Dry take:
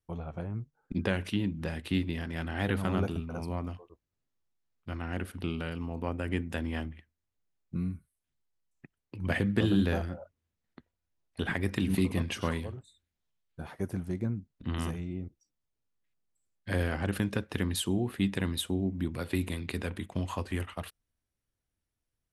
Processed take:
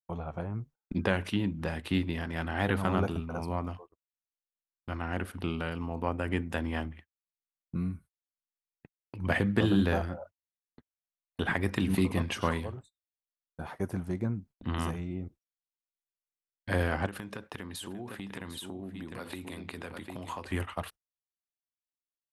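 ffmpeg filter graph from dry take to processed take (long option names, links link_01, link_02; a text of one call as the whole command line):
ffmpeg -i in.wav -filter_complex "[0:a]asettb=1/sr,asplit=3[link_01][link_02][link_03];[link_01]atrim=end=17.064[link_04];[link_02]atrim=start=17.06:end=20.45,asetpts=PTS-STARTPTS,afade=type=in:duration=0.004:curve=qsin,afade=type=out:start_time=3.386:duration=0.004:curve=qsin,lowshelf=frequency=97:gain=-12,aecho=1:1:749:0.282,atrim=end_sample=149499,acompressor=threshold=-38dB:ratio=5:attack=3.2:release=140:knee=1:detection=peak[link_05];[link_03]atrim=start=20.446[link_06];[link_04][link_05]acrossfade=duration=0.004:curve1=hsin:curve2=qsin[link_07];[link_07][link_06]acrossfade=duration=0.004:curve1=qsin:curve2=hsin,agate=range=-32dB:threshold=-50dB:ratio=16:detection=peak,equalizer=frequency=960:width_type=o:width=1.5:gain=6" out.wav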